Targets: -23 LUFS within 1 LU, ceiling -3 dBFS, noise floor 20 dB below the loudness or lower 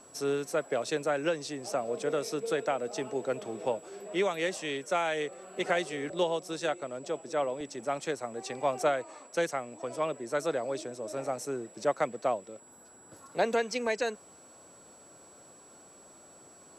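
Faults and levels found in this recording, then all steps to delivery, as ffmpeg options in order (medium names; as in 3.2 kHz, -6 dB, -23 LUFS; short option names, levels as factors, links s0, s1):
steady tone 7.8 kHz; tone level -55 dBFS; loudness -32.5 LUFS; peak level -15.0 dBFS; loudness target -23.0 LUFS
-> -af "bandreject=f=7800:w=30"
-af "volume=2.99"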